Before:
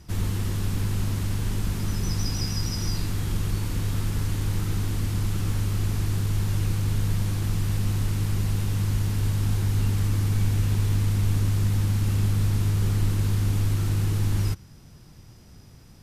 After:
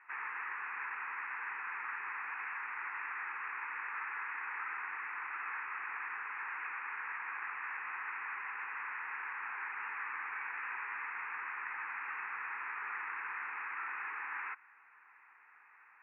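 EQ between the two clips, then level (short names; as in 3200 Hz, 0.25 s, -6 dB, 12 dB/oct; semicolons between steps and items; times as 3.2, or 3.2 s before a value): HPF 890 Hz 24 dB/oct; rippled Chebyshev low-pass 2600 Hz, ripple 3 dB; fixed phaser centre 1500 Hz, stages 4; +8.5 dB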